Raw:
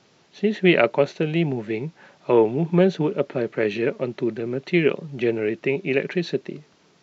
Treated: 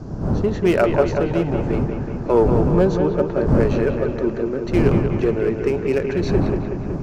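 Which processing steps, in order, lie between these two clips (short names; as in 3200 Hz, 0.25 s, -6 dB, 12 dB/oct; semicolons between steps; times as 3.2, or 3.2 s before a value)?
wind noise 160 Hz -21 dBFS; low shelf 190 Hz -8.5 dB; in parallel at -4 dB: hard clip -21.5 dBFS, distortion -6 dB; on the sum: band shelf 2700 Hz -10.5 dB 1.3 oct; analogue delay 0.186 s, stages 4096, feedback 66%, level -6.5 dB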